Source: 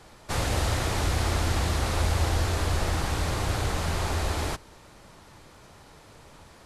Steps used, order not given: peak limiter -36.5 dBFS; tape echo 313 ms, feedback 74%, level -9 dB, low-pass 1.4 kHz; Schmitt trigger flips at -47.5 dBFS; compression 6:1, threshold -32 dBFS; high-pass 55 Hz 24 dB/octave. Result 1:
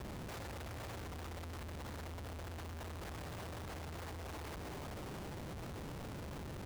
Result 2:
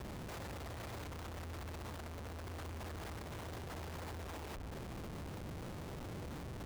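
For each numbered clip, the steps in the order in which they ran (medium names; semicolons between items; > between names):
high-pass > compression > tape echo > peak limiter > Schmitt trigger; compression > high-pass > peak limiter > Schmitt trigger > tape echo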